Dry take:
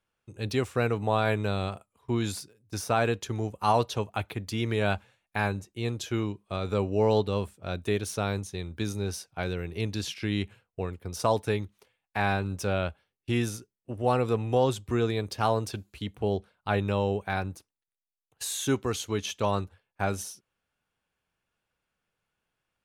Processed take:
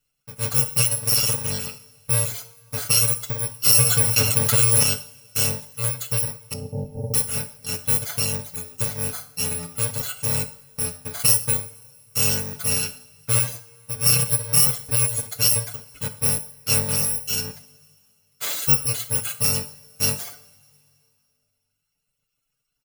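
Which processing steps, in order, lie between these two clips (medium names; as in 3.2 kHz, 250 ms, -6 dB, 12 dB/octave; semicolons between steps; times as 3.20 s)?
bit-reversed sample order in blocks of 128 samples; reverb removal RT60 1.7 s; 6.53–7.14 s: elliptic low-pass 770 Hz, stop band 40 dB; comb 6.8 ms, depth 87%; two-slope reverb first 0.47 s, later 2.7 s, from -21 dB, DRR 8 dB; 3.66–4.83 s: level flattener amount 70%; trim +4.5 dB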